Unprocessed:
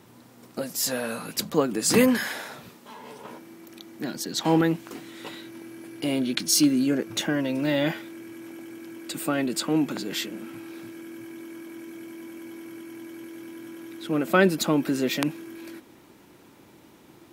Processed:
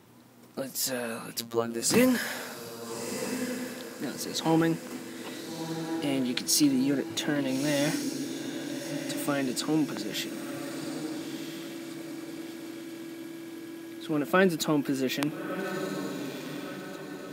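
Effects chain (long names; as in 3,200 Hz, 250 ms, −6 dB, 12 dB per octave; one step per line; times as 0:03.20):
0:01.39–0:01.82: phases set to zero 116 Hz
on a send: feedback delay with all-pass diffusion 1,338 ms, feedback 50%, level −8 dB
on the sum: level −3.5 dB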